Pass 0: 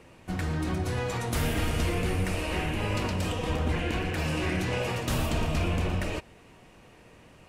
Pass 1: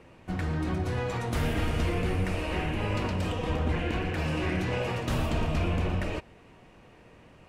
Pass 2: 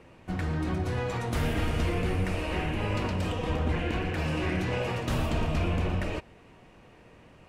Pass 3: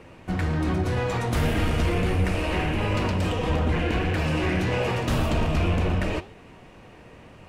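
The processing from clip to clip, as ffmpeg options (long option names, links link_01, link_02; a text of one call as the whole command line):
ffmpeg -i in.wav -af "highshelf=frequency=5000:gain=-10.5" out.wav
ffmpeg -i in.wav -af anull out.wav
ffmpeg -i in.wav -filter_complex "[0:a]asplit=2[link_01][link_02];[link_02]asoftclip=type=hard:threshold=-31.5dB,volume=-6.5dB[link_03];[link_01][link_03]amix=inputs=2:normalize=0,flanger=delay=9.1:depth=7:regen=86:speed=1.9:shape=sinusoidal,volume=7.5dB" out.wav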